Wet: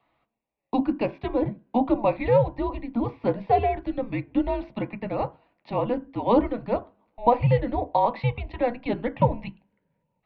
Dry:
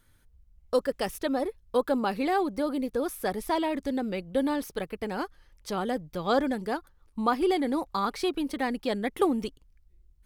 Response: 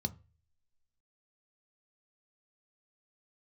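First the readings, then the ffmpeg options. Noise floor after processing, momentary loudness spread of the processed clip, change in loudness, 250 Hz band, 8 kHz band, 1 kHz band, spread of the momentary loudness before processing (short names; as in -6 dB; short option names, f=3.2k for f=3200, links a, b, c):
-78 dBFS, 9 LU, +3.5 dB, +2.0 dB, under -35 dB, +4.5 dB, 8 LU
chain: -filter_complex "[0:a]highpass=300,asplit=2[a][b];[1:a]atrim=start_sample=2205,lowpass=3.1k[c];[b][c]afir=irnorm=-1:irlink=0,volume=3.5dB[d];[a][d]amix=inputs=2:normalize=0,highpass=f=420:t=q:w=0.5412,highpass=f=420:t=q:w=1.307,lowpass=f=3.2k:t=q:w=0.5176,lowpass=f=3.2k:t=q:w=0.7071,lowpass=f=3.2k:t=q:w=1.932,afreqshift=-240,volume=3dB"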